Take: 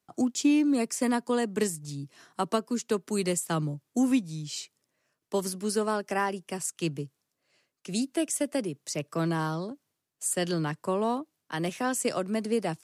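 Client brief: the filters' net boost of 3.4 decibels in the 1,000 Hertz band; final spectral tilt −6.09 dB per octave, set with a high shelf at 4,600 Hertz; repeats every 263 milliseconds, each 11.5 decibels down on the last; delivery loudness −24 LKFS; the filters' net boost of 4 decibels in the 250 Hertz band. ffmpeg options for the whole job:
ffmpeg -i in.wav -af "equalizer=frequency=250:width_type=o:gain=4.5,equalizer=frequency=1000:width_type=o:gain=4.5,highshelf=frequency=4600:gain=-9,aecho=1:1:263|526|789:0.266|0.0718|0.0194,volume=2.5dB" out.wav

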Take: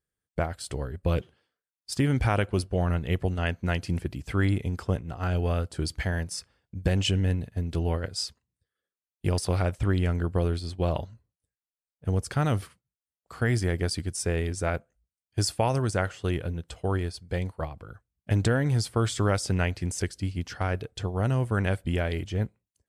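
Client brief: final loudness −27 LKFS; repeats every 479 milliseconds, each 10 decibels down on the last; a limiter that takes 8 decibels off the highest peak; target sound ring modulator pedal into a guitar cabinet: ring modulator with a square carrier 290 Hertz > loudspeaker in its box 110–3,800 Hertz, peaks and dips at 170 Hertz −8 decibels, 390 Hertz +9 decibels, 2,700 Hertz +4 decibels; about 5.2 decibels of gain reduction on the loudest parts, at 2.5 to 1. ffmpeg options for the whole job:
ffmpeg -i in.wav -af "acompressor=threshold=-27dB:ratio=2.5,alimiter=limit=-23dB:level=0:latency=1,aecho=1:1:479|958|1437|1916:0.316|0.101|0.0324|0.0104,aeval=exprs='val(0)*sgn(sin(2*PI*290*n/s))':channel_layout=same,highpass=110,equalizer=frequency=170:width_type=q:width=4:gain=-8,equalizer=frequency=390:width_type=q:width=4:gain=9,equalizer=frequency=2700:width_type=q:width=4:gain=4,lowpass=frequency=3800:width=0.5412,lowpass=frequency=3800:width=1.3066,volume=3.5dB" out.wav

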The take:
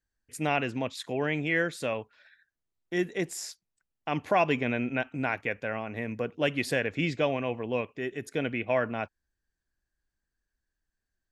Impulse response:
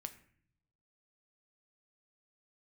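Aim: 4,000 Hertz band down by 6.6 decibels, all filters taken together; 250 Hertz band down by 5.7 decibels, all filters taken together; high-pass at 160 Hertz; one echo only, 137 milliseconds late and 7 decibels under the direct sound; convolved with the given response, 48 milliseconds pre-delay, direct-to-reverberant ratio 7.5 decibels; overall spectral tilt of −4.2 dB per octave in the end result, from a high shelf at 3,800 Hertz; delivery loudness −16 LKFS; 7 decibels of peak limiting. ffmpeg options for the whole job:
-filter_complex "[0:a]highpass=160,equalizer=frequency=250:width_type=o:gain=-6.5,highshelf=frequency=3800:gain=-4.5,equalizer=frequency=4000:width_type=o:gain=-7,alimiter=limit=-20.5dB:level=0:latency=1,aecho=1:1:137:0.447,asplit=2[link_01][link_02];[1:a]atrim=start_sample=2205,adelay=48[link_03];[link_02][link_03]afir=irnorm=-1:irlink=0,volume=-4dB[link_04];[link_01][link_04]amix=inputs=2:normalize=0,volume=17dB"

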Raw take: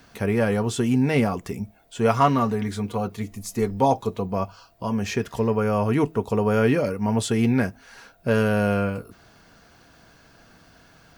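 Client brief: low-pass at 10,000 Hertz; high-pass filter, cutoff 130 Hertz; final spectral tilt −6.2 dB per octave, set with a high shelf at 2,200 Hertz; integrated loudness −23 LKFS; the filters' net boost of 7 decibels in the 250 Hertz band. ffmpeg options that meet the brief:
ffmpeg -i in.wav -af "highpass=130,lowpass=10000,equalizer=frequency=250:width_type=o:gain=8.5,highshelf=frequency=2200:gain=5,volume=-4dB" out.wav

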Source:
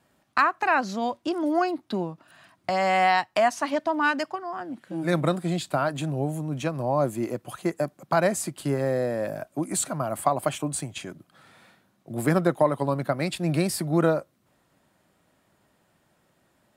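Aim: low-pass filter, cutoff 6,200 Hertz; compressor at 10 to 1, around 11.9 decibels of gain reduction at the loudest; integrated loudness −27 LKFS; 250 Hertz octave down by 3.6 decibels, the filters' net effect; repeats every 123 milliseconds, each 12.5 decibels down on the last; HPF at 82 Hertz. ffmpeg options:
ffmpeg -i in.wav -af "highpass=82,lowpass=6200,equalizer=frequency=250:width_type=o:gain=-5.5,acompressor=threshold=-28dB:ratio=10,aecho=1:1:123|246|369:0.237|0.0569|0.0137,volume=7dB" out.wav

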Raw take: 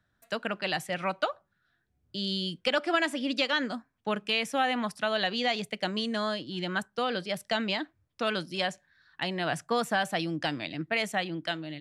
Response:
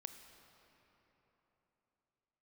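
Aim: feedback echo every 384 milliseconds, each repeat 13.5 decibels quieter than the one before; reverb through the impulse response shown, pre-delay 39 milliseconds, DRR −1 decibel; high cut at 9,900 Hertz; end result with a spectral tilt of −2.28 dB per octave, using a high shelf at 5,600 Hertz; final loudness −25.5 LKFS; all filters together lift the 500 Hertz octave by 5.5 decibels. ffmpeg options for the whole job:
-filter_complex "[0:a]lowpass=9900,equalizer=frequency=500:width_type=o:gain=7,highshelf=frequency=5600:gain=-4.5,aecho=1:1:384|768:0.211|0.0444,asplit=2[link_01][link_02];[1:a]atrim=start_sample=2205,adelay=39[link_03];[link_02][link_03]afir=irnorm=-1:irlink=0,volume=5.5dB[link_04];[link_01][link_04]amix=inputs=2:normalize=0,volume=-0.5dB"

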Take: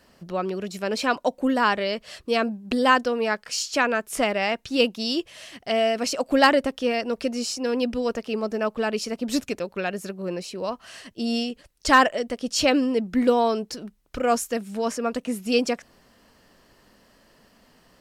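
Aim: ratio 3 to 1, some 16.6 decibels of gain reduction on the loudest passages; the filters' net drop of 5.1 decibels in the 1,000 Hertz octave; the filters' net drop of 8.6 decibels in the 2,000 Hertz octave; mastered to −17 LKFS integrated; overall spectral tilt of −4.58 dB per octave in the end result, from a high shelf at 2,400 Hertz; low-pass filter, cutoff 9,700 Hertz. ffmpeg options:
ffmpeg -i in.wav -af "lowpass=9700,equalizer=frequency=1000:width_type=o:gain=-4,equalizer=frequency=2000:width_type=o:gain=-6,highshelf=frequency=2400:gain=-8,acompressor=threshold=-40dB:ratio=3,volume=23dB" out.wav

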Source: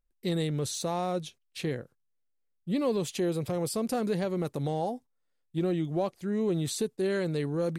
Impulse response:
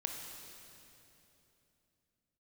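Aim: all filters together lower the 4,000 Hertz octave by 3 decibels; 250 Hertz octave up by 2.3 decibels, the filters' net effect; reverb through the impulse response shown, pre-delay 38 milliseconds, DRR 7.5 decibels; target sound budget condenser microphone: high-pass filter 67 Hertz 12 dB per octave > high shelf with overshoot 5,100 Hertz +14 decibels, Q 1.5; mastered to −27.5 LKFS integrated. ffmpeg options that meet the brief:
-filter_complex "[0:a]equalizer=frequency=250:width_type=o:gain=3.5,equalizer=frequency=4000:width_type=o:gain=-6,asplit=2[link_01][link_02];[1:a]atrim=start_sample=2205,adelay=38[link_03];[link_02][link_03]afir=irnorm=-1:irlink=0,volume=-8dB[link_04];[link_01][link_04]amix=inputs=2:normalize=0,highpass=67,highshelf=frequency=5100:width_type=q:width=1.5:gain=14,volume=-1dB"

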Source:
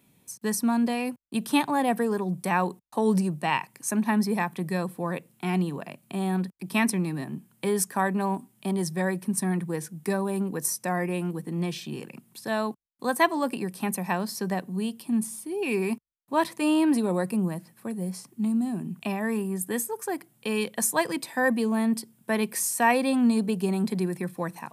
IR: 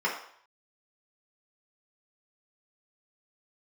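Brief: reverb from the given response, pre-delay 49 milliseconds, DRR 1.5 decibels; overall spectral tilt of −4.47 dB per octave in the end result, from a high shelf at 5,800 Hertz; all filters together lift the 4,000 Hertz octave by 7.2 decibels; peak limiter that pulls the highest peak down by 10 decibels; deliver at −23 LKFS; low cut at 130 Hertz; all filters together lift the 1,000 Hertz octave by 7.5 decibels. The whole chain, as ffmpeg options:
-filter_complex "[0:a]highpass=130,equalizer=frequency=1000:width_type=o:gain=8.5,equalizer=frequency=4000:width_type=o:gain=6,highshelf=frequency=5800:gain=7.5,alimiter=limit=-14dB:level=0:latency=1,asplit=2[link_01][link_02];[1:a]atrim=start_sample=2205,adelay=49[link_03];[link_02][link_03]afir=irnorm=-1:irlink=0,volume=-12.5dB[link_04];[link_01][link_04]amix=inputs=2:normalize=0,volume=1.5dB"

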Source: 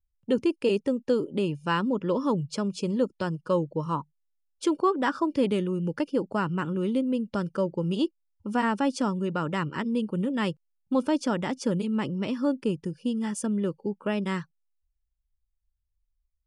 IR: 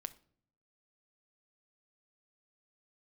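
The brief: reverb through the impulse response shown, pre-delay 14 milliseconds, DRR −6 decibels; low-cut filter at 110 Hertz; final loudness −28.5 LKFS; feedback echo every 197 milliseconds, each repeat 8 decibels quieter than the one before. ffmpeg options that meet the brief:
-filter_complex "[0:a]highpass=110,aecho=1:1:197|394|591|788|985:0.398|0.159|0.0637|0.0255|0.0102,asplit=2[link_01][link_02];[1:a]atrim=start_sample=2205,adelay=14[link_03];[link_02][link_03]afir=irnorm=-1:irlink=0,volume=9dB[link_04];[link_01][link_04]amix=inputs=2:normalize=0,volume=-7.5dB"

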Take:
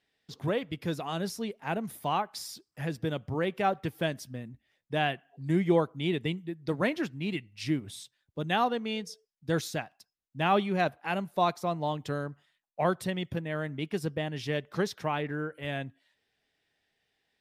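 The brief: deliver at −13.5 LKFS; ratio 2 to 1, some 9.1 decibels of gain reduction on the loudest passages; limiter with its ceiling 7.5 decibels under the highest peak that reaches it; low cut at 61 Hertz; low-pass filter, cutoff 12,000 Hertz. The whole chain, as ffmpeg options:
ffmpeg -i in.wav -af "highpass=61,lowpass=12000,acompressor=threshold=-36dB:ratio=2,volume=26.5dB,alimiter=limit=-1.5dB:level=0:latency=1" out.wav

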